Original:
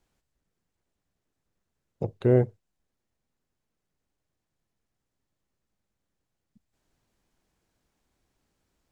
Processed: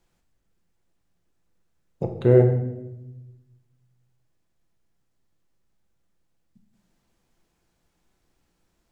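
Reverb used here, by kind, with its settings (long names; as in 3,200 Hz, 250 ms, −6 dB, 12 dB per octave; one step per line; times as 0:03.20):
rectangular room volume 420 cubic metres, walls mixed, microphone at 0.79 metres
level +2.5 dB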